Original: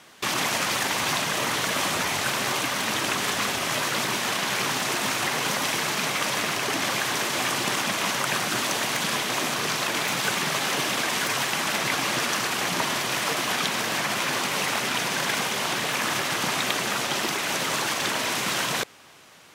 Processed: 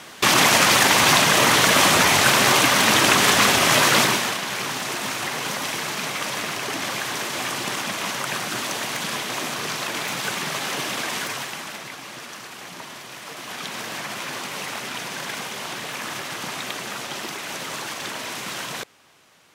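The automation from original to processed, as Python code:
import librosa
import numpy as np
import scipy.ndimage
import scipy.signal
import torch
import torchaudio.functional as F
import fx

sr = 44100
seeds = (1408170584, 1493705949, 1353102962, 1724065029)

y = fx.gain(x, sr, db=fx.line((4.0, 9.5), (4.41, -1.5), (11.17, -1.5), (11.96, -12.0), (13.22, -12.0), (13.77, -5.0)))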